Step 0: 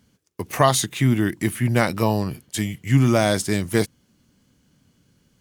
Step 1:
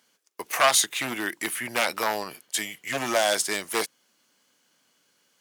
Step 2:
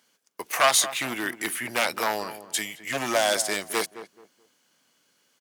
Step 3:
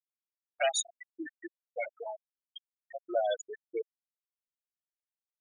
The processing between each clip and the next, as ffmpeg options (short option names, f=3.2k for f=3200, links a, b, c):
-af "aeval=exprs='0.282*(abs(mod(val(0)/0.282+3,4)-2)-1)':c=same,highpass=660,volume=2dB"
-filter_complex "[0:a]asplit=2[a][b];[b]adelay=215,lowpass=f=1.1k:p=1,volume=-11.5dB,asplit=2[c][d];[d]adelay=215,lowpass=f=1.1k:p=1,volume=0.28,asplit=2[e][f];[f]adelay=215,lowpass=f=1.1k:p=1,volume=0.28[g];[a][c][e][g]amix=inputs=4:normalize=0"
-af "afftfilt=real='re*gte(hypot(re,im),0.251)':imag='im*gte(hypot(re,im),0.251)':win_size=1024:overlap=0.75,asuperstop=centerf=1100:order=4:qfactor=1.4,volume=-3.5dB"